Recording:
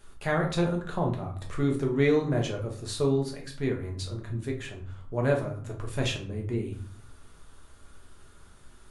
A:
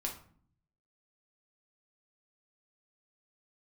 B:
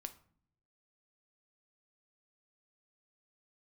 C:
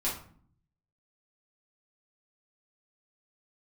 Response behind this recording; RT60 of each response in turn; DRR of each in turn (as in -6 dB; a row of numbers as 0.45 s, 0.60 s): A; 0.50 s, 0.55 s, 0.50 s; -0.5 dB, 8.5 dB, -7.5 dB